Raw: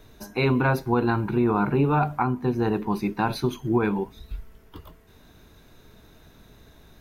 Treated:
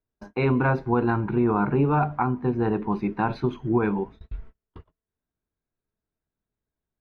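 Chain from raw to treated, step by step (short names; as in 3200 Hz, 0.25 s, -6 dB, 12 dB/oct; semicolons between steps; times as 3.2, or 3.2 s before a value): gate -40 dBFS, range -36 dB; LPF 2200 Hz 12 dB/oct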